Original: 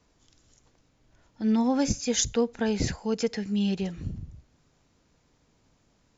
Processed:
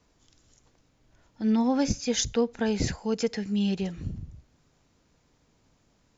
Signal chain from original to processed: 1.50–2.51 s: low-pass 6.5 kHz 24 dB/octave

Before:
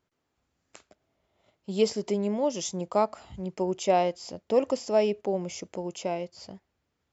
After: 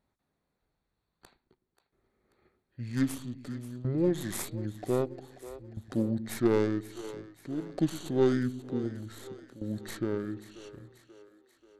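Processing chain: tracing distortion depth 0.2 ms; peaking EQ 4.9 kHz -10 dB 0.26 oct; wide varispeed 0.604×; tremolo saw down 0.52 Hz, depth 85%; two-band feedback delay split 350 Hz, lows 110 ms, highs 535 ms, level -14 dB

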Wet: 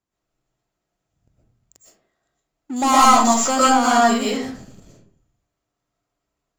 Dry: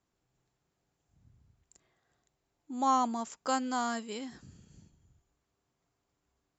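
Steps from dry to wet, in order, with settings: 2.76–3.43 s: treble shelf 2.5 kHz +11 dB; waveshaping leveller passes 3; algorithmic reverb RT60 0.53 s, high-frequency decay 0.55×, pre-delay 80 ms, DRR -6.5 dB; trim +1 dB

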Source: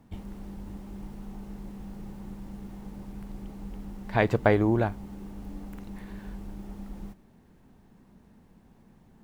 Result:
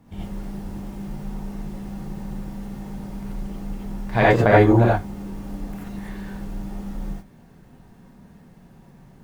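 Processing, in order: gated-style reverb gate 110 ms rising, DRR -6.5 dB; trim +1.5 dB

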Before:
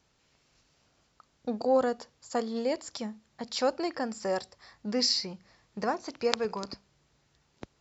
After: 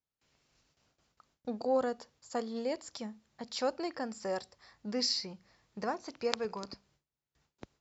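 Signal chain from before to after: gate with hold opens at -58 dBFS; trim -5 dB

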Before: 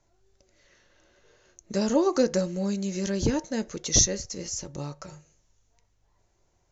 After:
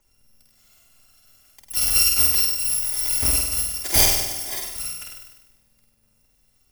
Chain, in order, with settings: bit-reversed sample order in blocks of 256 samples; on a send: flutter echo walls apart 8.5 m, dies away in 0.96 s; on the sum: trim +2.5 dB

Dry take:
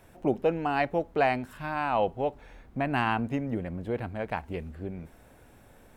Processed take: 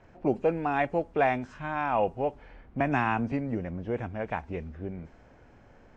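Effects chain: knee-point frequency compression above 2.3 kHz 1.5:1; level-controlled noise filter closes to 2.9 kHz, open at -21.5 dBFS; 2.80–3.32 s: three bands compressed up and down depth 70%

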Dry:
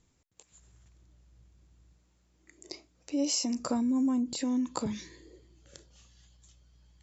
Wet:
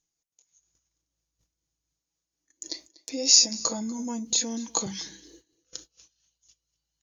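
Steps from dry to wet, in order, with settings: rotating-head pitch shifter -1.5 st; gate -56 dBFS, range -19 dB; tone controls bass -7 dB, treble +15 dB; comb 6.1 ms, depth 42%; on a send: delay 242 ms -22 dB; on the sum: trim +2.5 dB

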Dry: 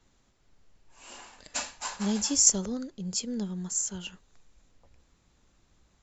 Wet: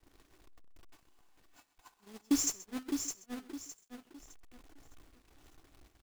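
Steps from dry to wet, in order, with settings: jump at every zero crossing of -32.5 dBFS; in parallel at -1 dB: compression 16:1, threshold -36 dBFS, peak gain reduction 22 dB; on the sum: treble shelf 4.7 kHz -10 dB; comb 2.7 ms, depth 63%; small resonant body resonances 300/930 Hz, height 7 dB, ringing for 30 ms; bit crusher 5-bit; gate -23 dBFS, range -38 dB; on a send: delay 129 ms -18.5 dB; on the sum: bit-crushed delay 611 ms, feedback 35%, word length 9-bit, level -6 dB; trim -8 dB

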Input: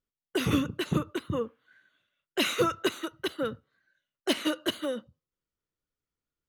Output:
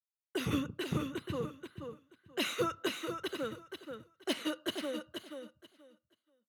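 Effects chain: 3.00–3.45 s: block-companded coder 7-bit; expander -59 dBFS; feedback delay 481 ms, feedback 19%, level -7 dB; trim -7 dB

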